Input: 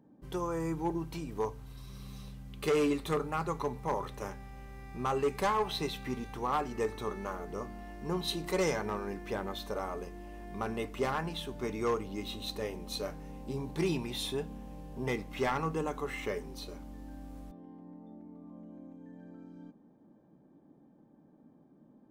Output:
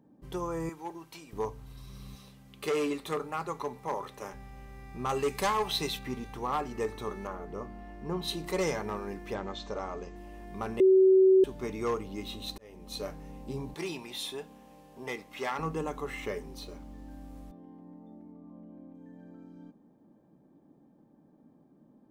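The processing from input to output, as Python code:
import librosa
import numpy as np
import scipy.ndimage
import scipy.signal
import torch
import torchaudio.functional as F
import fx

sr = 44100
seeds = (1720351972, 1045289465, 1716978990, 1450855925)

y = fx.highpass(x, sr, hz=980.0, slope=6, at=(0.69, 1.33))
y = fx.highpass(y, sr, hz=280.0, slope=6, at=(2.15, 4.34))
y = fx.high_shelf(y, sr, hz=2400.0, db=8.0, at=(5.09, 5.99))
y = fx.high_shelf(y, sr, hz=4000.0, db=-11.0, at=(7.27, 8.22))
y = fx.steep_lowpass(y, sr, hz=7800.0, slope=96, at=(9.34, 10.16))
y = fx.highpass(y, sr, hz=570.0, slope=6, at=(13.74, 15.59))
y = fx.median_filter(y, sr, points=3, at=(16.62, 17.1))
y = fx.air_absorb(y, sr, metres=210.0, at=(18.32, 18.95))
y = fx.edit(y, sr, fx.bleep(start_s=10.8, length_s=0.64, hz=379.0, db=-16.5),
    fx.fade_in_span(start_s=12.58, length_s=0.44), tone=tone)
y = fx.notch(y, sr, hz=1500.0, q=20.0)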